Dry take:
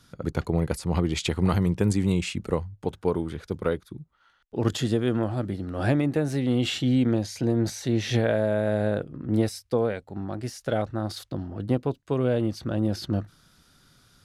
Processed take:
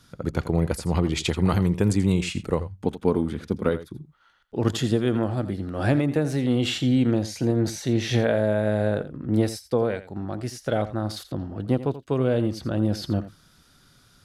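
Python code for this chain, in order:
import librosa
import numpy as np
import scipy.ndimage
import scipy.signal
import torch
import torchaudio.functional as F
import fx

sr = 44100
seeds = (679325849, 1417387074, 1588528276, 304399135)

y = fx.peak_eq(x, sr, hz=230.0, db=9.5, octaves=0.53, at=(2.81, 3.69))
y = y + 10.0 ** (-14.0 / 20.0) * np.pad(y, (int(84 * sr / 1000.0), 0))[:len(y)]
y = F.gain(torch.from_numpy(y), 1.5).numpy()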